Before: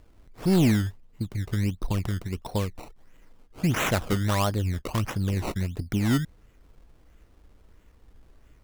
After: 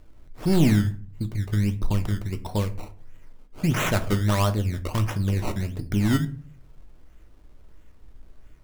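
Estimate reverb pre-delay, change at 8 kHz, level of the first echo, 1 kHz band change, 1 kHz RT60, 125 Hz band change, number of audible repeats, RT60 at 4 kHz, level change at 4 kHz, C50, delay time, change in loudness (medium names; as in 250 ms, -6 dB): 3 ms, +0.5 dB, no echo, +0.5 dB, 0.40 s, +3.0 dB, no echo, 0.25 s, +0.5 dB, 16.0 dB, no echo, +2.0 dB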